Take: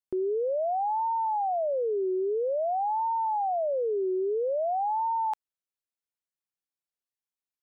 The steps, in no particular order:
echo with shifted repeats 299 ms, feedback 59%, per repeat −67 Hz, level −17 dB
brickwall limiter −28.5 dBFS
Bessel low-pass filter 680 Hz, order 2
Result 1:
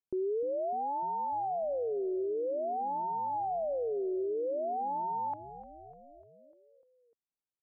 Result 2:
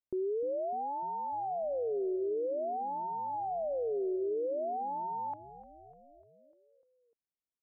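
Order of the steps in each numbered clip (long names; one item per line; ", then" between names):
echo with shifted repeats, then Bessel low-pass filter, then brickwall limiter
brickwall limiter, then echo with shifted repeats, then Bessel low-pass filter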